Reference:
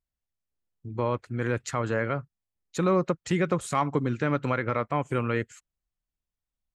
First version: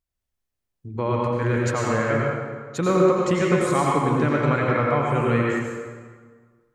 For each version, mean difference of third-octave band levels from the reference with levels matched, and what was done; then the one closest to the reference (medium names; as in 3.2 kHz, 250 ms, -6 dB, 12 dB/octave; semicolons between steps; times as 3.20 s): 8.0 dB: plate-style reverb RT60 1.6 s, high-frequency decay 0.7×, pre-delay 75 ms, DRR -3 dB; trim +1.5 dB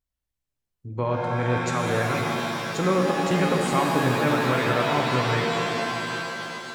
12.0 dB: pitch-shifted reverb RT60 3.3 s, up +7 st, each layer -2 dB, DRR 0 dB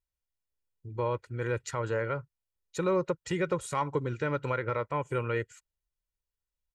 1.5 dB: comb 2.1 ms, depth 57%; trim -5 dB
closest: third